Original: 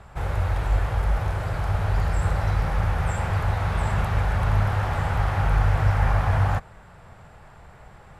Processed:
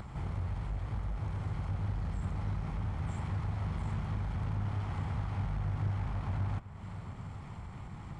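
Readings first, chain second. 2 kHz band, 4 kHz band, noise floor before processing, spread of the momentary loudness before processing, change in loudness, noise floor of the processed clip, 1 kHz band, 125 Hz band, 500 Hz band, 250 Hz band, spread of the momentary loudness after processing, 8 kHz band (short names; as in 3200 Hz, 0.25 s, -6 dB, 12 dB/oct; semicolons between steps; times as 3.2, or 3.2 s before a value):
-18.5 dB, -15.0 dB, -48 dBFS, 5 LU, -12.5 dB, -46 dBFS, -16.5 dB, -10.5 dB, -17.0 dB, -6.5 dB, 10 LU, under -15 dB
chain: minimum comb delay 0.92 ms; compressor 2:1, threshold -39 dBFS, peak gain reduction 12.5 dB; downsampling 22050 Hz; upward compressor, threshold -38 dBFS; on a send: darkening echo 0.419 s, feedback 82%, low-pass 4200 Hz, level -19 dB; on the sum: soft clip -25.5 dBFS, distortion -21 dB; bell 180 Hz +11.5 dB 2.6 oct; gain -6.5 dB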